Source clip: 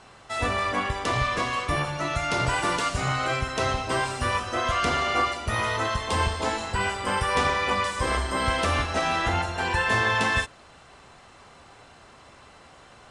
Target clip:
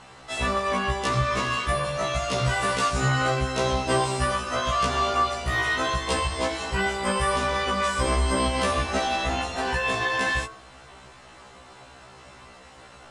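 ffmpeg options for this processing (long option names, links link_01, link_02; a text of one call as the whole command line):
ffmpeg -i in.wav -af "alimiter=limit=-17dB:level=0:latency=1:release=144,bandreject=frequency=110.2:width_type=h:width=4,bandreject=frequency=220.4:width_type=h:width=4,bandreject=frequency=330.6:width_type=h:width=4,bandreject=frequency=440.8:width_type=h:width=4,bandreject=frequency=551:width_type=h:width=4,bandreject=frequency=661.2:width_type=h:width=4,bandreject=frequency=771.4:width_type=h:width=4,bandreject=frequency=881.6:width_type=h:width=4,bandreject=frequency=991.8:width_type=h:width=4,bandreject=frequency=1102:width_type=h:width=4,bandreject=frequency=1212.2:width_type=h:width=4,bandreject=frequency=1322.4:width_type=h:width=4,bandreject=frequency=1432.6:width_type=h:width=4,bandreject=frequency=1542.8:width_type=h:width=4,afftfilt=real='re*1.73*eq(mod(b,3),0)':imag='im*1.73*eq(mod(b,3),0)':win_size=2048:overlap=0.75,volume=5.5dB" out.wav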